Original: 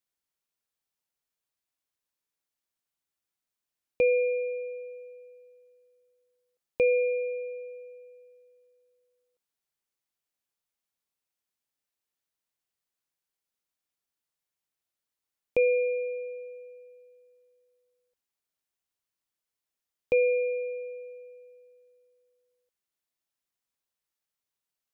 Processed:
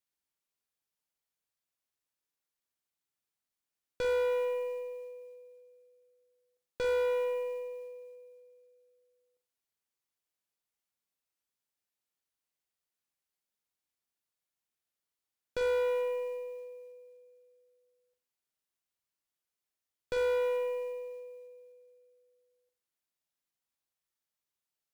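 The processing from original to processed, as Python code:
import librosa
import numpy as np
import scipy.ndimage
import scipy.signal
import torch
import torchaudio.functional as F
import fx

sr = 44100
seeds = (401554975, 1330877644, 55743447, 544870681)

y = fx.tube_stage(x, sr, drive_db=30.0, bias=0.6)
y = fx.room_flutter(y, sr, wall_m=7.6, rt60_s=0.31)
y = fx.quant_float(y, sr, bits=4)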